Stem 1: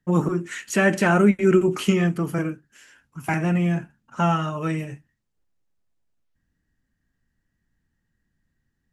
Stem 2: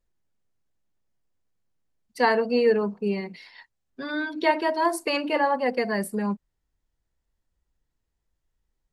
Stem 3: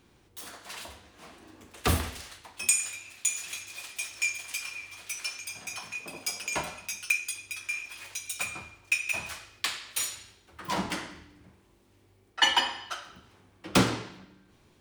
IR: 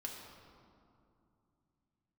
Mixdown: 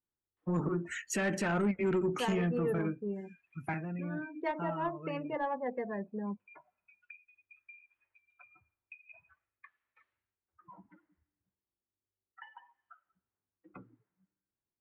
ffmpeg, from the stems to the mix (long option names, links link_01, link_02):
-filter_complex "[0:a]adelay=400,volume=-5.5dB,afade=type=out:start_time=3.54:duration=0.32:silence=0.251189[link_01];[1:a]adynamicsmooth=sensitivity=1:basefreq=1200,adynamicequalizer=threshold=0.0158:dfrequency=2000:dqfactor=0.7:tfrequency=2000:tqfactor=0.7:attack=5:release=100:ratio=0.375:range=1.5:mode=cutabove:tftype=highshelf,volume=-10.5dB,asplit=2[link_02][link_03];[2:a]lowpass=frequency=1900:width=0.5412,lowpass=frequency=1900:width=1.3066,acompressor=threshold=-43dB:ratio=3,crystalizer=i=3:c=0,volume=-11dB[link_04];[link_03]apad=whole_len=652850[link_05];[link_04][link_05]sidechaincompress=threshold=-45dB:ratio=8:attack=10:release=271[link_06];[link_01][link_02][link_06]amix=inputs=3:normalize=0,afftdn=noise_reduction=26:noise_floor=-45,asoftclip=type=tanh:threshold=-18.5dB,alimiter=level_in=0.5dB:limit=-24dB:level=0:latency=1:release=117,volume=-0.5dB"